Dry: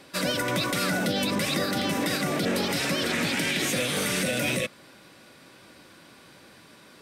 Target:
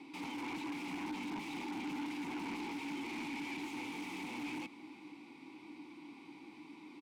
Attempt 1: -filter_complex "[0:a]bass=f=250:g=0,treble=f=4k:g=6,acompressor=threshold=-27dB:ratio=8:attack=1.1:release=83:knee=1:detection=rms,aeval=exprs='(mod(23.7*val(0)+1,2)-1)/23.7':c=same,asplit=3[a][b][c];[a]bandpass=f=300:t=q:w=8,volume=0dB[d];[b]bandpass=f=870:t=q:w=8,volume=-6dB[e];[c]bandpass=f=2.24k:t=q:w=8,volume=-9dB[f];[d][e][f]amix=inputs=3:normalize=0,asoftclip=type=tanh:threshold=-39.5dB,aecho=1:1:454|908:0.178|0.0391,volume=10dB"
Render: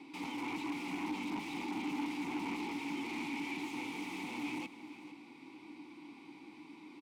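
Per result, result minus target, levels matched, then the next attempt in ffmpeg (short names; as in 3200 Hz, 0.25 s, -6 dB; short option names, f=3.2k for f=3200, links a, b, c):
soft clip: distortion -9 dB; echo-to-direct +6.5 dB
-filter_complex "[0:a]bass=f=250:g=0,treble=f=4k:g=6,acompressor=threshold=-27dB:ratio=8:attack=1.1:release=83:knee=1:detection=rms,aeval=exprs='(mod(23.7*val(0)+1,2)-1)/23.7':c=same,asplit=3[a][b][c];[a]bandpass=f=300:t=q:w=8,volume=0dB[d];[b]bandpass=f=870:t=q:w=8,volume=-6dB[e];[c]bandpass=f=2.24k:t=q:w=8,volume=-9dB[f];[d][e][f]amix=inputs=3:normalize=0,asoftclip=type=tanh:threshold=-46.5dB,aecho=1:1:454|908:0.178|0.0391,volume=10dB"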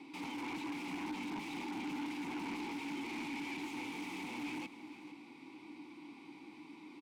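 echo-to-direct +6.5 dB
-filter_complex "[0:a]bass=f=250:g=0,treble=f=4k:g=6,acompressor=threshold=-27dB:ratio=8:attack=1.1:release=83:knee=1:detection=rms,aeval=exprs='(mod(23.7*val(0)+1,2)-1)/23.7':c=same,asplit=3[a][b][c];[a]bandpass=f=300:t=q:w=8,volume=0dB[d];[b]bandpass=f=870:t=q:w=8,volume=-6dB[e];[c]bandpass=f=2.24k:t=q:w=8,volume=-9dB[f];[d][e][f]amix=inputs=3:normalize=0,asoftclip=type=tanh:threshold=-46.5dB,aecho=1:1:454|908:0.0841|0.0185,volume=10dB"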